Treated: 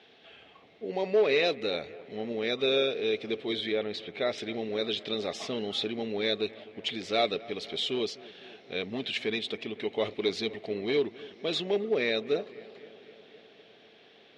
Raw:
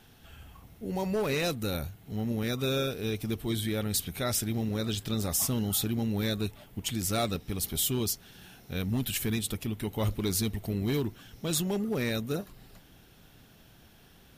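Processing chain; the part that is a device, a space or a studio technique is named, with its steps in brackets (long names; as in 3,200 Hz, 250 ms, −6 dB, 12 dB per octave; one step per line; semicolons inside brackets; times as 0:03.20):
phone earpiece (loudspeaker in its box 370–4,100 Hz, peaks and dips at 430 Hz +7 dB, 650 Hz +4 dB, 940 Hz −6 dB, 1,400 Hz −6 dB, 2,200 Hz +5 dB, 3,700 Hz +4 dB)
0:03.72–0:04.38: low-pass filter 2,600 Hz 6 dB per octave
high-shelf EQ 12,000 Hz +5 dB
bucket-brigade delay 254 ms, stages 4,096, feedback 70%, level −20 dB
level +2.5 dB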